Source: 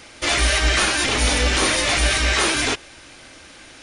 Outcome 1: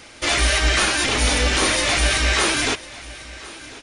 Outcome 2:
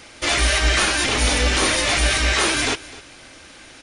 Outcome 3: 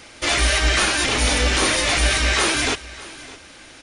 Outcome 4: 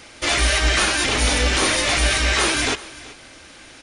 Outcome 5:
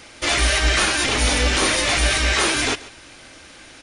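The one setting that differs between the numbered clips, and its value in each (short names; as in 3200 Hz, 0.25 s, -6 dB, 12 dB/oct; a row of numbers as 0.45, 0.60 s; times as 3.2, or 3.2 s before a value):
echo, time: 1.047, 0.256, 0.61, 0.379, 0.14 s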